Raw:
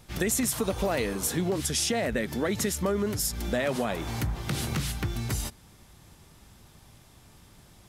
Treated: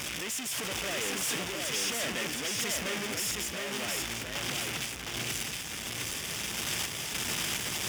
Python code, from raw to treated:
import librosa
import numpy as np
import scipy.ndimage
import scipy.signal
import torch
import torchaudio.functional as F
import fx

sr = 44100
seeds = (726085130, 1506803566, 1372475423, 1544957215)

y = np.sign(x) * np.sqrt(np.mean(np.square(x)))
y = fx.peak_eq(y, sr, hz=4100.0, db=-12.0, octaves=0.29)
y = fx.tremolo_random(y, sr, seeds[0], hz=3.5, depth_pct=55)
y = fx.weighting(y, sr, curve='D')
y = y + 10.0 ** (-3.0 / 20.0) * np.pad(y, (int(712 * sr / 1000.0), 0))[:len(y)]
y = y * 10.0 ** (-5.5 / 20.0)